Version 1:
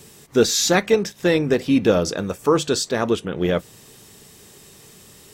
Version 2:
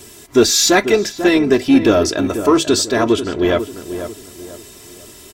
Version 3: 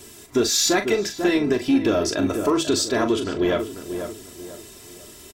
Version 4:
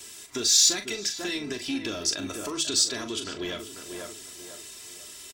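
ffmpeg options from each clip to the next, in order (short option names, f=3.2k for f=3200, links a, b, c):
-filter_complex "[0:a]aecho=1:1:3:0.74,asplit=2[a][b];[b]asoftclip=type=tanh:threshold=-16.5dB,volume=-4.5dB[c];[a][c]amix=inputs=2:normalize=0,asplit=2[d][e];[e]adelay=492,lowpass=f=1.4k:p=1,volume=-9.5dB,asplit=2[f][g];[g]adelay=492,lowpass=f=1.4k:p=1,volume=0.37,asplit=2[h][i];[i]adelay=492,lowpass=f=1.4k:p=1,volume=0.37,asplit=2[j][k];[k]adelay=492,lowpass=f=1.4k:p=1,volume=0.37[l];[d][f][h][j][l]amix=inputs=5:normalize=0,volume=1dB"
-filter_complex "[0:a]acompressor=threshold=-12dB:ratio=6,asplit=2[a][b];[b]adelay=40,volume=-9dB[c];[a][c]amix=inputs=2:normalize=0,volume=-4.5dB"
-filter_complex "[0:a]tiltshelf=f=970:g=-8,acrossover=split=330|3300[a][b][c];[b]acompressor=threshold=-32dB:ratio=6[d];[a][d][c]amix=inputs=3:normalize=0,equalizer=f=13k:t=o:w=0.3:g=-12.5,volume=-4.5dB"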